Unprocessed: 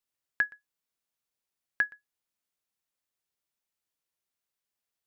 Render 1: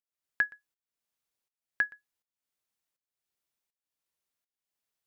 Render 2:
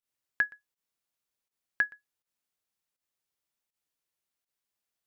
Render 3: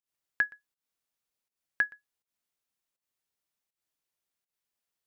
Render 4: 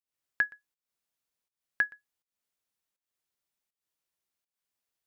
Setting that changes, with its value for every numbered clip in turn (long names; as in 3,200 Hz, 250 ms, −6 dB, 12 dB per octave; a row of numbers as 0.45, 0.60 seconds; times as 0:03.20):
fake sidechain pumping, release: 498, 85, 153, 260 milliseconds